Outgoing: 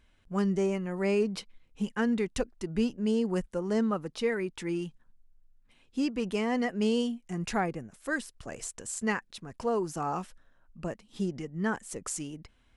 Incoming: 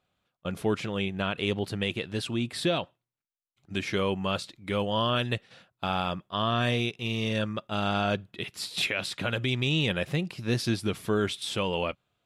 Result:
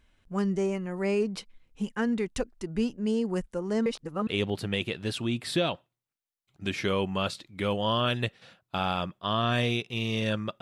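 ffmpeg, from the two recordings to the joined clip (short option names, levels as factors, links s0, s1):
-filter_complex "[0:a]apad=whole_dur=10.61,atrim=end=10.61,asplit=2[s0][s1];[s0]atrim=end=3.862[s2];[s1]atrim=start=3.858:end=4.272,asetpts=PTS-STARTPTS,areverse[s3];[1:a]atrim=start=1.358:end=7.7[s4];[s2][s3]acrossfade=d=0.004:c1=hsin:c2=hsin[s5];[s5][s4]acrossfade=d=0.004:c1=hsin:c2=hsin"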